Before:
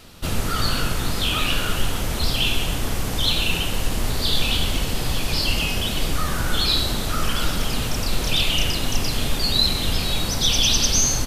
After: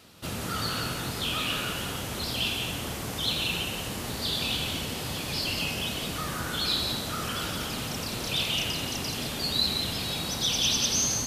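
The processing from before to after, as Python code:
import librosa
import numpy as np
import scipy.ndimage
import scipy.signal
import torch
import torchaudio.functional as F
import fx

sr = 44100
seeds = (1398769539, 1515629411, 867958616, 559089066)

y = scipy.signal.sosfilt(scipy.signal.butter(2, 100.0, 'highpass', fs=sr, output='sos'), x)
y = y + 10.0 ** (-6.0 / 20.0) * np.pad(y, (int(175 * sr / 1000.0), 0))[:len(y)]
y = F.gain(torch.from_numpy(y), -7.0).numpy()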